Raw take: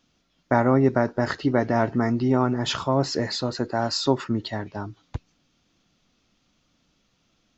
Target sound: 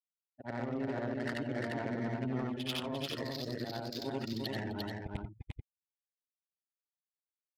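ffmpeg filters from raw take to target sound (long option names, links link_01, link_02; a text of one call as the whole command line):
ffmpeg -i in.wav -filter_complex "[0:a]afftfilt=real='re':imag='-im':win_size=8192:overlap=0.75,acrusher=bits=4:mode=log:mix=0:aa=0.000001,highshelf=frequency=1700:width_type=q:width=1.5:gain=10,areverse,acompressor=threshold=-33dB:ratio=6,areverse,afftfilt=real='re*gte(hypot(re,im),0.0112)':imag='im*gte(hypot(re,im),0.0112)':win_size=1024:overlap=0.75,adynamicsmooth=sensitivity=5.5:basefreq=960,asplit=2[link_01][link_02];[link_02]aecho=0:1:348:0.668[link_03];[link_01][link_03]amix=inputs=2:normalize=0" out.wav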